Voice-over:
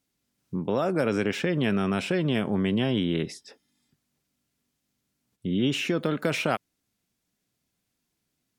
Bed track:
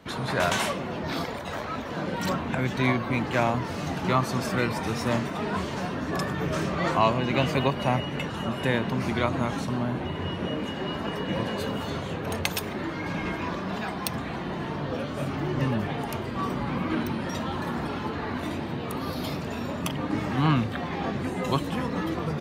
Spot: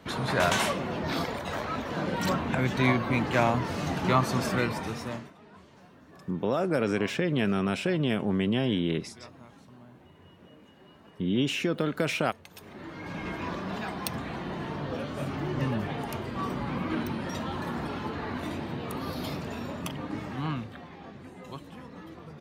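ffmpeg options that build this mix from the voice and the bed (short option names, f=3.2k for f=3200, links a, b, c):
-filter_complex "[0:a]adelay=5750,volume=-1.5dB[a];[1:a]volume=20.5dB,afade=t=out:st=4.45:d=0.9:silence=0.0668344,afade=t=in:st=12.49:d=1.01:silence=0.0944061,afade=t=out:st=19.37:d=1.61:silence=0.223872[b];[a][b]amix=inputs=2:normalize=0"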